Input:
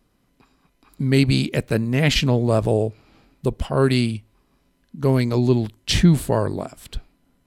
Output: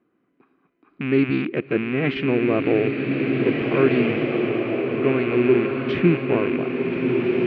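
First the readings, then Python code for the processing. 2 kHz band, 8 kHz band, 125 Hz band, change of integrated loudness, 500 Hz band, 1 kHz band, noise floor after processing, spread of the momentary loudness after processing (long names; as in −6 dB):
+3.0 dB, below −35 dB, −7.5 dB, −1.0 dB, +3.0 dB, −1.0 dB, −68 dBFS, 5 LU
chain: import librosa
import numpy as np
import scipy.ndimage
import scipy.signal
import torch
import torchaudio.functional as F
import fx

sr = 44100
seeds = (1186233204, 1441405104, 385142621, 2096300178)

y = fx.rattle_buzz(x, sr, strikes_db=-23.0, level_db=-14.0)
y = fx.cabinet(y, sr, low_hz=240.0, low_slope=12, high_hz=2200.0, hz=(340.0, 590.0, 900.0, 1900.0), db=(8, -6, -8, -4))
y = fx.rev_bloom(y, sr, seeds[0], attack_ms=2080, drr_db=0.0)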